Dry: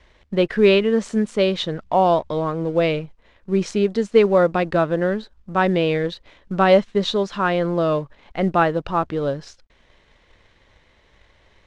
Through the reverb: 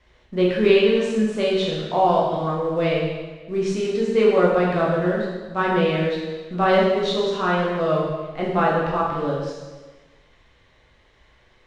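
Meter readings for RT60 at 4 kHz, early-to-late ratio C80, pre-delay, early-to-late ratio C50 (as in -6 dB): 1.2 s, 3.0 dB, 5 ms, 1.0 dB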